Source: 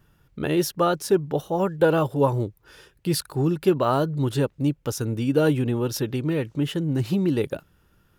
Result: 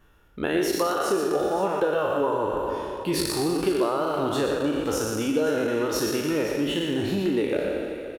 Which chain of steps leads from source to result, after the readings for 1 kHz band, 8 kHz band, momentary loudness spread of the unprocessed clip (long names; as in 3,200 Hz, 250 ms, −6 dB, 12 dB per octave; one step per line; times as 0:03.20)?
+0.5 dB, +2.0 dB, 7 LU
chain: peak hold with a decay on every bin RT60 2.45 s
high-shelf EQ 5,800 Hz −7.5 dB
reverb reduction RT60 0.81 s
parametric band 130 Hz −14 dB 1.1 octaves
notch filter 4,900 Hz, Q 11
downward compressor, threshold −24 dBFS, peak gain reduction 10.5 dB
multi-tap delay 118/514 ms −6.5/−14.5 dB
level +2.5 dB